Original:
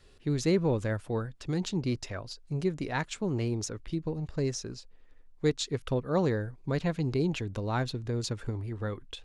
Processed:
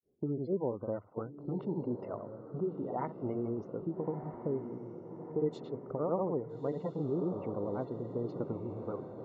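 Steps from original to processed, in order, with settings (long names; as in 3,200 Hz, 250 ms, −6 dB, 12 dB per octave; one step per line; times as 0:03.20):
granular cloud 220 ms, grains 8.8 per second, pitch spread up and down by 0 semitones
noise gate −48 dBFS, range −9 dB
Savitzky-Golay smoothing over 65 samples
low-pass that shuts in the quiet parts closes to 330 Hz, open at −24.5 dBFS
high-pass filter 230 Hz 12 dB per octave
parametric band 300 Hz −2.5 dB 1.4 octaves
gate on every frequency bin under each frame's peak −30 dB strong
downward compressor 2 to 1, threshold −41 dBFS, peak gain reduction 9.5 dB
on a send: feedback delay with all-pass diffusion 1,303 ms, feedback 52%, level −9 dB
on the sum: level +6 dB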